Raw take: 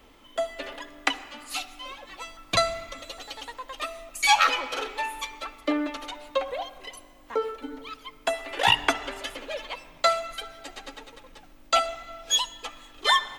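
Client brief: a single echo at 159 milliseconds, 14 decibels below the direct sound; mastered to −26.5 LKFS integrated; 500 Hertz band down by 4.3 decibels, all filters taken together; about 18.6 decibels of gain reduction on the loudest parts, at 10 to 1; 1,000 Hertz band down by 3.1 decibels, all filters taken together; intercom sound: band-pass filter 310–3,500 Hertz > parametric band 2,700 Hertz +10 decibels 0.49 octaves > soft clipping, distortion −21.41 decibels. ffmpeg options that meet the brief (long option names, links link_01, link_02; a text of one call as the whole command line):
ffmpeg -i in.wav -af "equalizer=frequency=500:width_type=o:gain=-4,equalizer=frequency=1000:width_type=o:gain=-3.5,acompressor=threshold=-36dB:ratio=10,highpass=310,lowpass=3500,equalizer=frequency=2700:width_type=o:width=0.49:gain=10,aecho=1:1:159:0.2,asoftclip=threshold=-23dB,volume=12dB" out.wav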